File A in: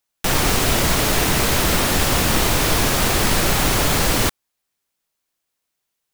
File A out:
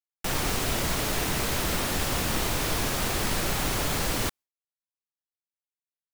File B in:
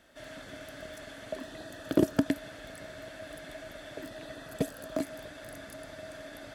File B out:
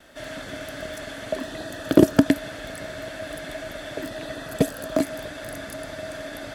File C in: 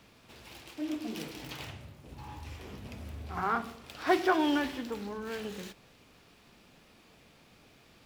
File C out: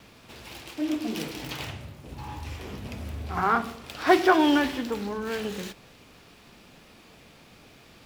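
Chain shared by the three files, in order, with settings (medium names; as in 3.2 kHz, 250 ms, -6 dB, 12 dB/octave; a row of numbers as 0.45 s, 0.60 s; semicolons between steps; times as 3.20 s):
gate with hold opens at -55 dBFS; normalise loudness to -27 LUFS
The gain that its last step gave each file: -9.5 dB, +10.0 dB, +7.0 dB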